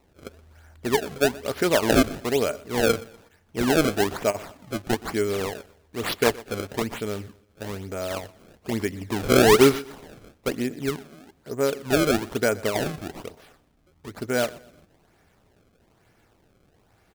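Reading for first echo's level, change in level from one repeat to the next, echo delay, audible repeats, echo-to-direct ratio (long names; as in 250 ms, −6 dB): −21.0 dB, −9.0 dB, 122 ms, 2, −20.5 dB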